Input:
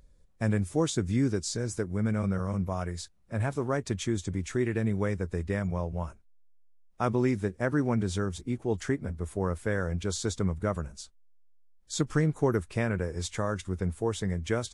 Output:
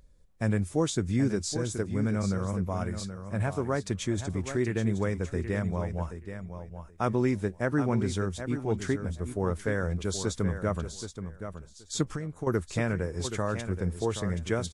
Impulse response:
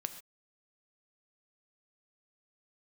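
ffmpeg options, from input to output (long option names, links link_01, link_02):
-filter_complex "[0:a]asettb=1/sr,asplit=3[link_01][link_02][link_03];[link_01]atrim=end=12.034[link_04];[link_02]atrim=start=12.03:end=12.47,asetpts=PTS-STARTPTS,afade=type=in:duration=0.004:curve=qsin,afade=type=out:start_time=0.436:duration=0.004:curve=qsin,acompressor=threshold=-33dB:ratio=6[link_05];[link_03]atrim=start=12.466[link_06];[link_04][link_05]acrossfade=duration=0.004:curve1=hsin:curve2=qsin[link_07];[link_07][link_06]acrossfade=duration=0.004:curve1=qsin:curve2=hsin,aecho=1:1:776|1552:0.335|0.0536"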